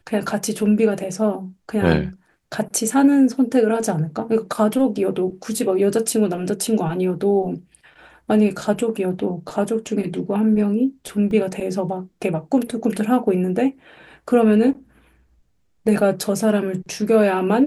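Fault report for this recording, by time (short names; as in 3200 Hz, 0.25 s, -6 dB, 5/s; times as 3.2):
11.31 gap 2.1 ms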